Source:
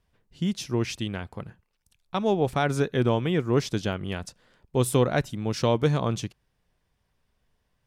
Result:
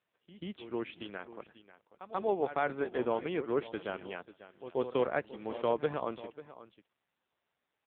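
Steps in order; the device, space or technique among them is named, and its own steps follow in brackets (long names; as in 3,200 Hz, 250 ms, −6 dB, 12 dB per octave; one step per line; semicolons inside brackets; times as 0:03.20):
backwards echo 136 ms −13 dB
satellite phone (band-pass filter 370–3,000 Hz; single-tap delay 541 ms −16 dB; level −4.5 dB; AMR narrowband 5.9 kbit/s 8,000 Hz)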